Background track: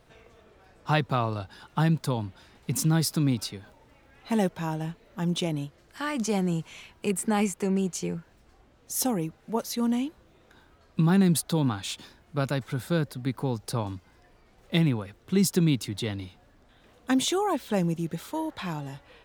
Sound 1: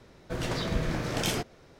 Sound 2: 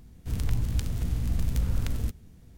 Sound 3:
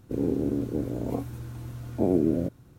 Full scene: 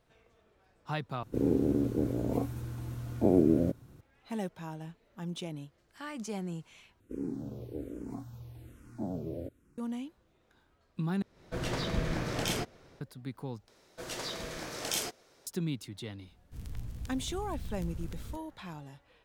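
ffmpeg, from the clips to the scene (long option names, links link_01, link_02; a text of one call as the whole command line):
ffmpeg -i bed.wav -i cue0.wav -i cue1.wav -i cue2.wav -filter_complex "[3:a]asplit=2[link_01][link_02];[1:a]asplit=2[link_03][link_04];[0:a]volume=-11dB[link_05];[link_02]asplit=2[link_06][link_07];[link_07]afreqshift=-1.2[link_08];[link_06][link_08]amix=inputs=2:normalize=1[link_09];[link_03]dynaudnorm=framelen=110:gausssize=3:maxgain=10dB[link_10];[link_04]bass=frequency=250:gain=-12,treble=frequency=4000:gain=9[link_11];[link_05]asplit=5[link_12][link_13][link_14][link_15][link_16];[link_12]atrim=end=1.234[link_17];[link_01]atrim=end=2.78,asetpts=PTS-STARTPTS,volume=-1dB[link_18];[link_13]atrim=start=4.006:end=7.004[link_19];[link_09]atrim=end=2.78,asetpts=PTS-STARTPTS,volume=-8dB[link_20];[link_14]atrim=start=9.776:end=11.224[link_21];[link_10]atrim=end=1.79,asetpts=PTS-STARTPTS,volume=-12.5dB[link_22];[link_15]atrim=start=13.006:end=13.684[link_23];[link_11]atrim=end=1.79,asetpts=PTS-STARTPTS,volume=-6.5dB[link_24];[link_16]atrim=start=15.466[link_25];[2:a]atrim=end=2.57,asetpts=PTS-STARTPTS,volume=-13.5dB,afade=type=in:duration=0.004:curve=hsin,afade=type=out:start_time=2.566:duration=0.004:curve=hsin,adelay=16260[link_26];[link_17][link_18]acrossfade=duration=0.004:curve1=hsin:curve2=hsin[link_27];[link_27][link_19]acrossfade=duration=0.004:curve1=hsin:curve2=hsin[link_28];[link_28][link_20]acrossfade=duration=0.004:curve1=hsin:curve2=hsin[link_29];[link_29][link_21]acrossfade=duration=0.004:curve1=hsin:curve2=hsin[link_30];[link_30][link_22]acrossfade=duration=0.004:curve1=hsin:curve2=hsin[link_31];[link_31][link_23]acrossfade=duration=0.004:curve1=hsin:curve2=hsin[link_32];[link_32][link_24]acrossfade=duration=0.004:curve1=hsin:curve2=hsin[link_33];[link_33][link_25]acrossfade=duration=0.004:curve1=hsin:curve2=hsin[link_34];[link_34][link_26]amix=inputs=2:normalize=0" out.wav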